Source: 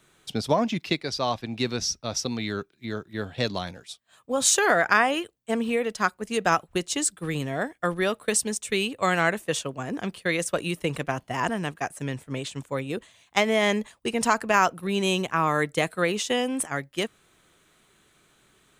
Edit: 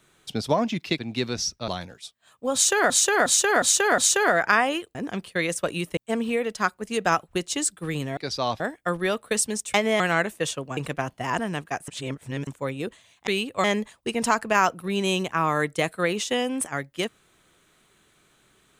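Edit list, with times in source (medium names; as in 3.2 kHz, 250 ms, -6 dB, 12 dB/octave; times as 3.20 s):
0.98–1.41 s: move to 7.57 s
2.11–3.54 s: delete
4.40–4.76 s: loop, 5 plays
8.71–9.08 s: swap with 13.37–13.63 s
9.85–10.87 s: move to 5.37 s
11.98–12.57 s: reverse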